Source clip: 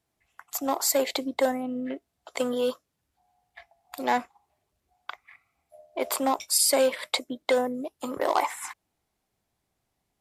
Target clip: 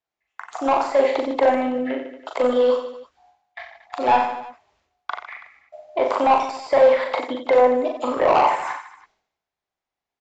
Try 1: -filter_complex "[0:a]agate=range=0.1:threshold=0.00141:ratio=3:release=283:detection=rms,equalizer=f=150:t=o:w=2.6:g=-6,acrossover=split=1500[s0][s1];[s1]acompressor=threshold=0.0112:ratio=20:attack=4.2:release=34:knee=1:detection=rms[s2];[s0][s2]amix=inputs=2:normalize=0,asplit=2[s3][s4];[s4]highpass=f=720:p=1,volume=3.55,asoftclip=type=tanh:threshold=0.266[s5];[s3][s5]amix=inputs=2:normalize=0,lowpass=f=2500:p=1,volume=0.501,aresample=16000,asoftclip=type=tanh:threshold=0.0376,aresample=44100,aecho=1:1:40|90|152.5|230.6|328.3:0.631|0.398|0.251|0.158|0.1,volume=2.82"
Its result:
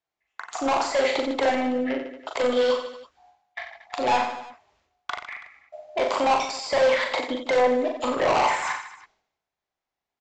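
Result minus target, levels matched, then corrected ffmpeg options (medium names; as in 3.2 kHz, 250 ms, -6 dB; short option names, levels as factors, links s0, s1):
compression: peak gain reduction -9.5 dB; saturation: distortion +8 dB
-filter_complex "[0:a]agate=range=0.1:threshold=0.00141:ratio=3:release=283:detection=rms,equalizer=f=150:t=o:w=2.6:g=-6,acrossover=split=1500[s0][s1];[s1]acompressor=threshold=0.00355:ratio=20:attack=4.2:release=34:knee=1:detection=rms[s2];[s0][s2]amix=inputs=2:normalize=0,asplit=2[s3][s4];[s4]highpass=f=720:p=1,volume=3.55,asoftclip=type=tanh:threshold=0.266[s5];[s3][s5]amix=inputs=2:normalize=0,lowpass=f=2500:p=1,volume=0.501,aresample=16000,asoftclip=type=tanh:threshold=0.1,aresample=44100,aecho=1:1:40|90|152.5|230.6|328.3:0.631|0.398|0.251|0.158|0.1,volume=2.82"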